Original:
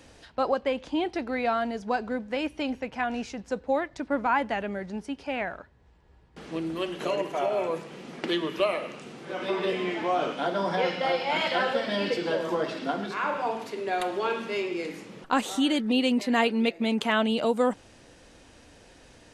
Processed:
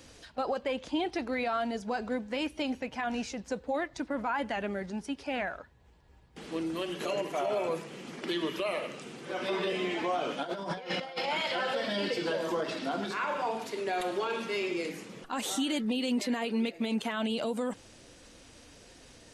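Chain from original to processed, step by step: bin magnitudes rounded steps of 15 dB; high shelf 3800 Hz +6.5 dB; 10.43–11.28 negative-ratio compressor -32 dBFS, ratio -0.5; limiter -21 dBFS, peak gain reduction 12.5 dB; gain -1.5 dB

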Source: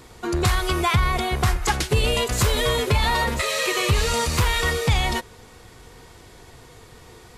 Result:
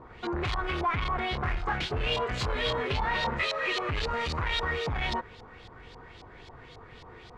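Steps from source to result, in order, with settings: soft clip -25 dBFS, distortion -7 dB; LFO low-pass saw up 3.7 Hz 860–4500 Hz; 1.31–3.46 doubler 23 ms -6 dB; gain -3.5 dB

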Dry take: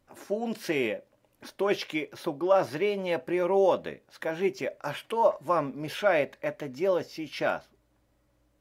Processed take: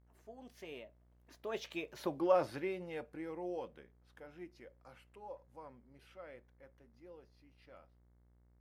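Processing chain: Doppler pass-by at 2.16, 34 m/s, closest 9.4 m; buzz 60 Hz, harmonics 37, -62 dBFS -8 dB/oct; gain -5.5 dB

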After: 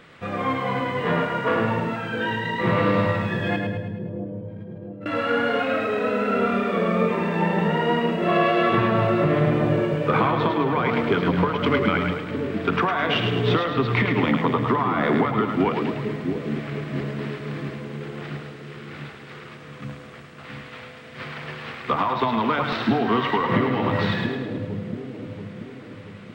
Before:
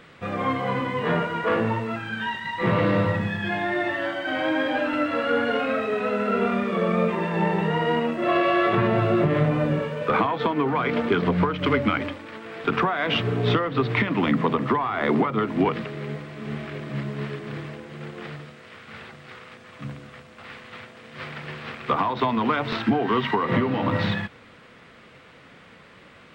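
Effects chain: 3.56–5.06 gate -18 dBFS, range -43 dB; split-band echo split 540 Hz, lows 0.682 s, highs 0.106 s, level -5 dB

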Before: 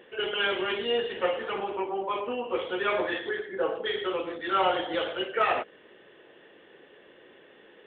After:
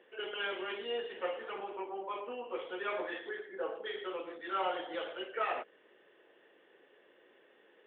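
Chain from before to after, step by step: three-band isolator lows -12 dB, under 260 Hz, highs -14 dB, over 3900 Hz; gain -9 dB

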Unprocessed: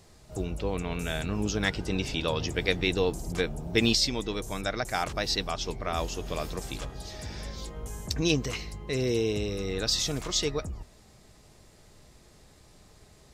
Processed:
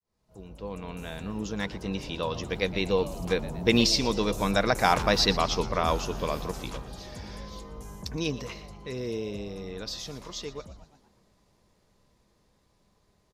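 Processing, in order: opening faded in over 0.83 s; Doppler pass-by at 4.99, 8 m/s, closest 7 m; thirty-one-band EQ 200 Hz +7 dB, 500 Hz +5 dB, 1000 Hz +8 dB, 8000 Hz -6 dB; on a send: frequency-shifting echo 0.118 s, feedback 54%, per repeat +100 Hz, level -16.5 dB; on the sum: gain +5.5 dB

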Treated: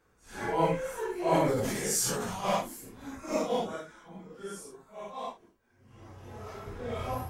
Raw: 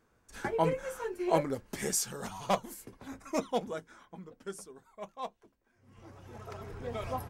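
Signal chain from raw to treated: phase scrambler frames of 0.2 s; 1.13–2.43 sustainer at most 25 dB/s; gain +2.5 dB

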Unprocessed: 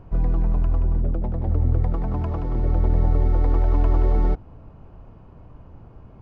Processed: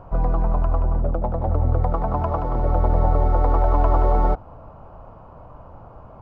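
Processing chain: band shelf 850 Hz +11.5 dB

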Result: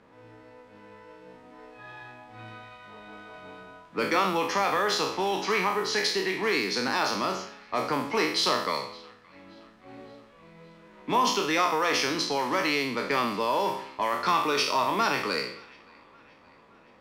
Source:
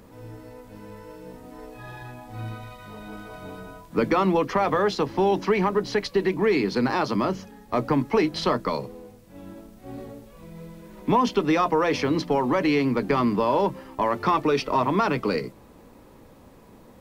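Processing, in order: spectral trails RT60 0.65 s; tilt +3.5 dB/oct; thin delay 0.57 s, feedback 60%, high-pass 1700 Hz, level -20 dB; low-pass opened by the level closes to 2000 Hz, open at -18.5 dBFS; gain -4 dB

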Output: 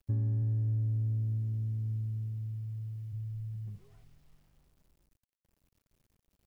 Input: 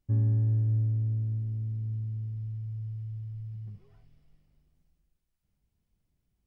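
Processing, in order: 0.41–3.12 HPF 41 Hz -> 120 Hz 12 dB/oct; requantised 12-bit, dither none; compressor, threshold -28 dBFS, peak gain reduction 6 dB

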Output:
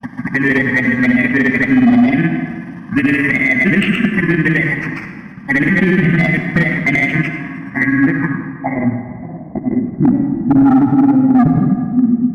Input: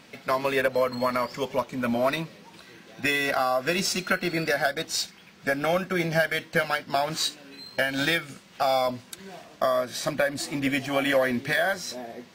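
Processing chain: FFT order left unsorted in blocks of 32 samples; gate with hold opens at -40 dBFS; ten-band EQ 250 Hz +10 dB, 500 Hz -11 dB, 1000 Hz -5 dB, 2000 Hz +8 dB, 4000 Hz -8 dB, 8000 Hz -5 dB; in parallel at +2 dB: compressor 6:1, threshold -30 dBFS, peak gain reduction 12.5 dB; on the sum: low-pass sweep 3000 Hz -> 230 Hz, 7.26–10.36; grains 85 ms, grains 19/s, pitch spread up and down by 0 st; envelope phaser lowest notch 360 Hz, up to 1600 Hz, full sweep at -17 dBFS; hard clip -19 dBFS, distortion -9 dB; resonant high shelf 2300 Hz -9.5 dB, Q 1.5; on a send at -7 dB: reverb RT60 1.8 s, pre-delay 54 ms; on the sum: maximiser +19 dB; gain -3.5 dB

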